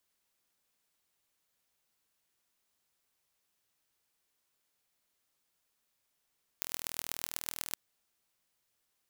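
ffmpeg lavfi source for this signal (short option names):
-f lavfi -i "aevalsrc='0.501*eq(mod(n,1094),0)*(0.5+0.5*eq(mod(n,5470),0))':d=1.14:s=44100"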